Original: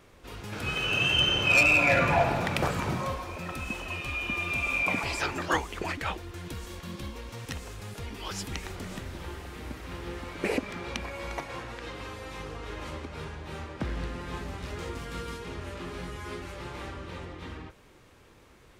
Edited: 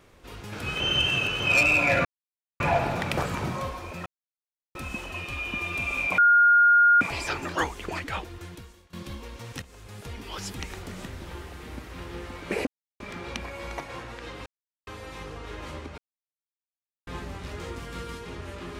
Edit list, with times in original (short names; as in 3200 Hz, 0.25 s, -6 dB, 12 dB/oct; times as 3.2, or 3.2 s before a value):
0.8–1.4 reverse
2.05 insert silence 0.55 s
3.51 insert silence 0.69 s
4.94 add tone 1420 Hz -14 dBFS 0.83 s
6.37–6.86 fade out quadratic, to -18.5 dB
7.55–8 fade in, from -13.5 dB
10.6 insert silence 0.33 s
12.06 insert silence 0.41 s
13.17–14.26 mute